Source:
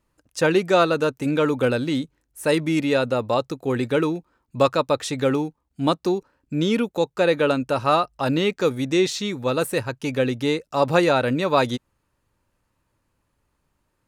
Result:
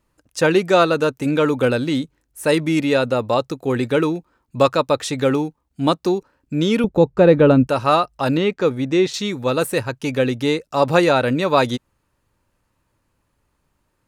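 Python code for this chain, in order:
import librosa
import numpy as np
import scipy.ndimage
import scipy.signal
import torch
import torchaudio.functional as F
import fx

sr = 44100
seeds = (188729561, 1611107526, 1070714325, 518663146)

y = fx.tilt_eq(x, sr, slope=-4.0, at=(6.84, 7.67))
y = fx.lowpass(y, sr, hz=2500.0, slope=6, at=(8.37, 9.14))
y = y * 10.0 ** (3.0 / 20.0)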